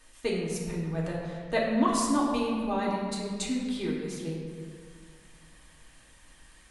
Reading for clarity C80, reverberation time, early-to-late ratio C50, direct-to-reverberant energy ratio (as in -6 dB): 2.5 dB, 1.9 s, 1.0 dB, -4.5 dB